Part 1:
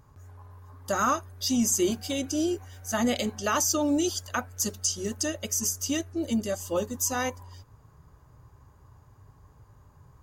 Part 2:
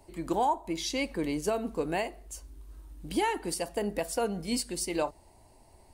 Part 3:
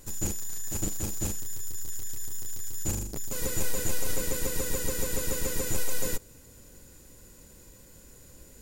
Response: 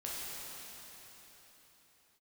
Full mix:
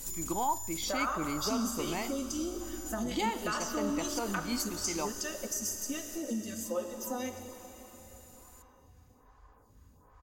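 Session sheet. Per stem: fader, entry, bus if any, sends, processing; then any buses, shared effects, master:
-0.5 dB, 0.00 s, bus A, send -11.5 dB, peaking EQ 130 Hz -6.5 dB 0.77 oct; lamp-driven phase shifter 1.2 Hz
-4.0 dB, 0.00 s, no bus, no send, elliptic low-pass 7.6 kHz; comb 0.9 ms, depth 49%
-0.5 dB, 0.00 s, bus A, no send, peaking EQ 13 kHz +12 dB 2.6 oct; compression 2:1, threshold -38 dBFS, peak gain reduction 11.5 dB; auto duck -14 dB, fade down 1.85 s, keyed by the first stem
bus A: 0.0 dB, comb 4 ms; compression, threshold -36 dBFS, peak gain reduction 16 dB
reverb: on, pre-delay 7 ms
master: none

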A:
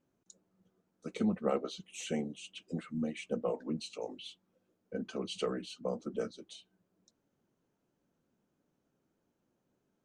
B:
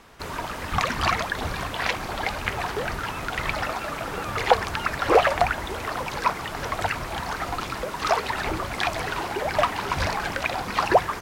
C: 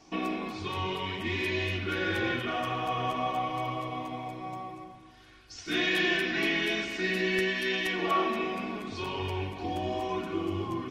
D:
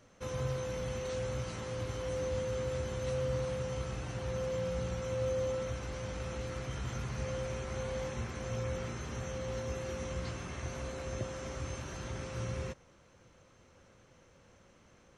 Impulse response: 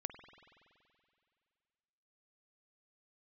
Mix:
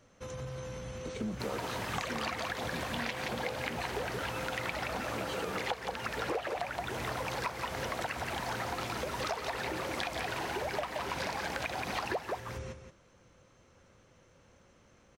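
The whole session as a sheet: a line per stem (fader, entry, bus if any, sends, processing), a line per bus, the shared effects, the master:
-5.0 dB, 0.00 s, no send, no echo send, waveshaping leveller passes 1
-3.0 dB, 1.20 s, no send, echo send -6 dB, high-pass 170 Hz 12 dB/octave; peaking EQ 1.2 kHz -4.5 dB 0.53 oct
mute
-1.0 dB, 0.00 s, no send, echo send -9.5 dB, peak limiter -32 dBFS, peak gain reduction 9 dB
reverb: none
echo: delay 174 ms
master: compression 8:1, threshold -32 dBFS, peak gain reduction 17.5 dB

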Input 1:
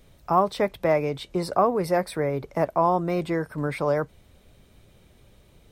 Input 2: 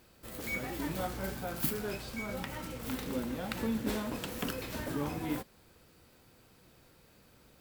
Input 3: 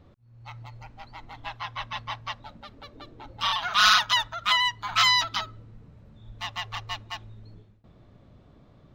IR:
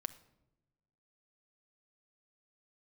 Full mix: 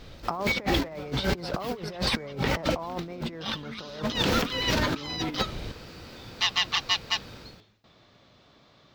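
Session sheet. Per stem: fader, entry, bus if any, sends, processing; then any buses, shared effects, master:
+1.5 dB, 0.00 s, bus A, no send, compression 12:1, threshold -24 dBFS, peak gain reduction 11 dB
+0.5 dB, 0.00 s, bus A, no send, none
-3.0 dB, 0.00 s, no bus, no send, tilt EQ +4 dB/octave; compression 16:1, threshold -20 dBFS, peak gain reduction 12.5 dB
bus A: 0.0 dB, level rider gain up to 10.5 dB; peak limiter -12 dBFS, peak gain reduction 8.5 dB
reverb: none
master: resonant high shelf 7 kHz -11.5 dB, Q 1.5; compressor with a negative ratio -28 dBFS, ratio -0.5

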